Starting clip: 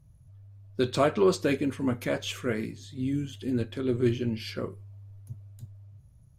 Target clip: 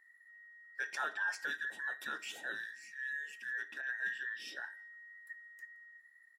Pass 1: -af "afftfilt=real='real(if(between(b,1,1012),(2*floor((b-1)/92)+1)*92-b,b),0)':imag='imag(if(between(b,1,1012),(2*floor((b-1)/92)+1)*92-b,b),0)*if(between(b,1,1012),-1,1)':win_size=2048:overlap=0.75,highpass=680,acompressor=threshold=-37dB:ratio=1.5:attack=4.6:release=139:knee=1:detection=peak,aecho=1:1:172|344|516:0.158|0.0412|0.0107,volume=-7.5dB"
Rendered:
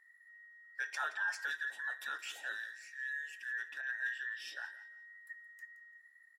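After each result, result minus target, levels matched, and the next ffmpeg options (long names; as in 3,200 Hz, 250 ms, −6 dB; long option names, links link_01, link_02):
250 Hz band −13.0 dB; echo-to-direct +12 dB
-af "afftfilt=real='real(if(between(b,1,1012),(2*floor((b-1)/92)+1)*92-b,b),0)':imag='imag(if(between(b,1,1012),(2*floor((b-1)/92)+1)*92-b,b),0)*if(between(b,1,1012),-1,1)':win_size=2048:overlap=0.75,highpass=230,acompressor=threshold=-37dB:ratio=1.5:attack=4.6:release=139:knee=1:detection=peak,aecho=1:1:172|344|516:0.158|0.0412|0.0107,volume=-7.5dB"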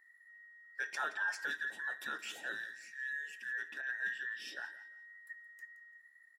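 echo-to-direct +12 dB
-af "afftfilt=real='real(if(between(b,1,1012),(2*floor((b-1)/92)+1)*92-b,b),0)':imag='imag(if(between(b,1,1012),(2*floor((b-1)/92)+1)*92-b,b),0)*if(between(b,1,1012),-1,1)':win_size=2048:overlap=0.75,highpass=230,acompressor=threshold=-37dB:ratio=1.5:attack=4.6:release=139:knee=1:detection=peak,aecho=1:1:172|344:0.0398|0.0104,volume=-7.5dB"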